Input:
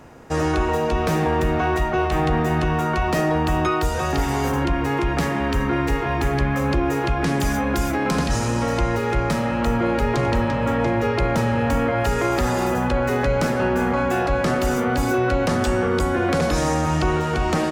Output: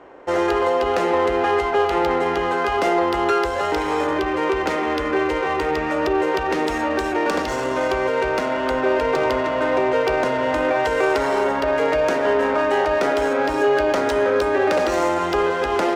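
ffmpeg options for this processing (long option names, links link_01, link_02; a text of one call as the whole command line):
ffmpeg -i in.wav -af "lowshelf=frequency=230:width_type=q:width=1.5:gain=-14,asetrate=48951,aresample=44100,adynamicsmooth=sensitivity=3:basefreq=2800,volume=1.5dB" out.wav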